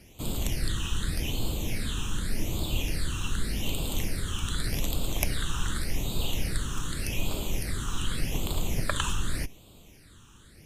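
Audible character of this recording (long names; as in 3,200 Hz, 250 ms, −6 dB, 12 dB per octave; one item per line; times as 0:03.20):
phaser sweep stages 8, 0.85 Hz, lowest notch 620–1,800 Hz
Opus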